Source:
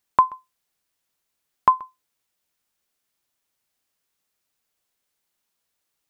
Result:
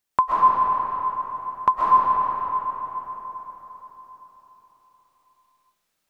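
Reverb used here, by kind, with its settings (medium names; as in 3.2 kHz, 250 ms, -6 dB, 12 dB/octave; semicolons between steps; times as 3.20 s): algorithmic reverb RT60 4.5 s, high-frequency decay 0.6×, pre-delay 90 ms, DRR -8 dB; trim -3 dB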